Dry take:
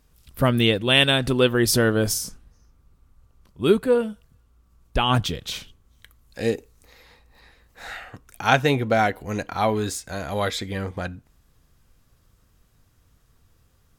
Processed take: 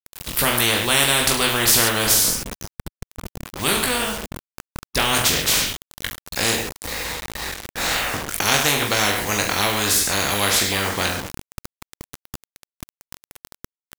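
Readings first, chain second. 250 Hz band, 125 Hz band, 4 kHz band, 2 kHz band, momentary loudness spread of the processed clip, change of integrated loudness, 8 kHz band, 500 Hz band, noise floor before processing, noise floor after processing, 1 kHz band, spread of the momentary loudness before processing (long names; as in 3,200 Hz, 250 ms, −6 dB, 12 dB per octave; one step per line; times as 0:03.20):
−3.0 dB, −3.5 dB, +6.0 dB, +5.5 dB, 16 LU, +3.0 dB, +13.0 dB, −3.5 dB, −62 dBFS, below −85 dBFS, +2.0 dB, 15 LU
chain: reverse bouncing-ball delay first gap 20 ms, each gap 1.15×, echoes 5
bit reduction 8 bits
every bin compressed towards the loudest bin 4 to 1
level −1 dB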